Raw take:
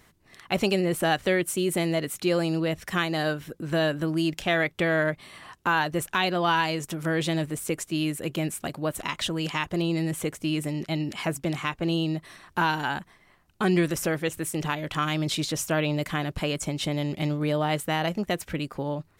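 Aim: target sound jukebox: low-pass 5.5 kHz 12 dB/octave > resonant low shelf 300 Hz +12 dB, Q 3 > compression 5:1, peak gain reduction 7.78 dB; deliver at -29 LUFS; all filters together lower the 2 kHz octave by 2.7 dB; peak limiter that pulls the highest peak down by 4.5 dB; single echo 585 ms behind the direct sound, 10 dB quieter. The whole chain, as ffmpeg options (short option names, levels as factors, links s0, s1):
-af "equalizer=f=2000:t=o:g=-3,alimiter=limit=0.15:level=0:latency=1,lowpass=5500,lowshelf=f=300:t=q:w=3:g=12,aecho=1:1:585:0.316,acompressor=threshold=0.2:ratio=5,volume=0.355"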